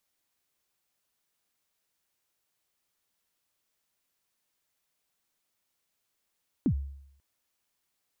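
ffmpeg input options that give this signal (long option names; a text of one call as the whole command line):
ffmpeg -f lavfi -i "aevalsrc='0.106*pow(10,-3*t/0.73)*sin(2*PI*(320*0.079/log(69/320)*(exp(log(69/320)*min(t,0.079)/0.079)-1)+69*max(t-0.079,0)))':duration=0.54:sample_rate=44100" out.wav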